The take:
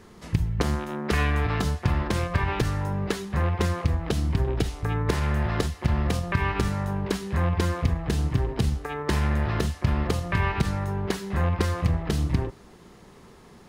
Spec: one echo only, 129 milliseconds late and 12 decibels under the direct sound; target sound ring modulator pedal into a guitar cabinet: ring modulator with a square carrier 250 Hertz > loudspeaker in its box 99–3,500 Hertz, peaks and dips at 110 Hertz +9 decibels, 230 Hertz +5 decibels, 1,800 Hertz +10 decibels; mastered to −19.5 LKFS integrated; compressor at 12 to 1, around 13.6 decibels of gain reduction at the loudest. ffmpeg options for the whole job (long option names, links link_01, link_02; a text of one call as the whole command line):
ffmpeg -i in.wav -af "acompressor=threshold=-32dB:ratio=12,aecho=1:1:129:0.251,aeval=exprs='val(0)*sgn(sin(2*PI*250*n/s))':channel_layout=same,highpass=99,equalizer=frequency=110:width_type=q:width=4:gain=9,equalizer=frequency=230:width_type=q:width=4:gain=5,equalizer=frequency=1800:width_type=q:width=4:gain=10,lowpass=frequency=3500:width=0.5412,lowpass=frequency=3500:width=1.3066,volume=15dB" out.wav